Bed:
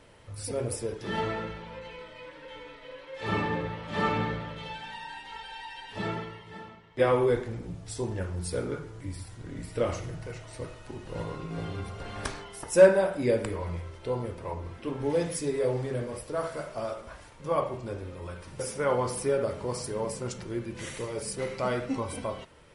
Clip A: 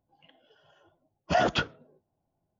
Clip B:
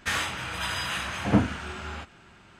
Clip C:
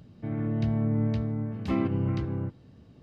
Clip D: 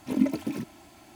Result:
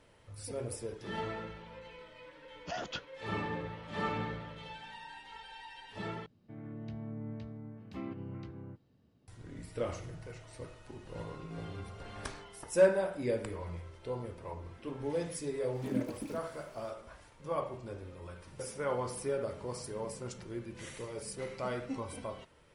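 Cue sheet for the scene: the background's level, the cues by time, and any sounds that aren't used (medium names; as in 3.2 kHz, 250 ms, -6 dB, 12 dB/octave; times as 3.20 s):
bed -7.5 dB
1.37 s: add A -16.5 dB + treble shelf 3.1 kHz +10.5 dB
6.26 s: replace with C -13.5 dB + bass shelf 130 Hz -5.5 dB
15.75 s: add D -10.5 dB
not used: B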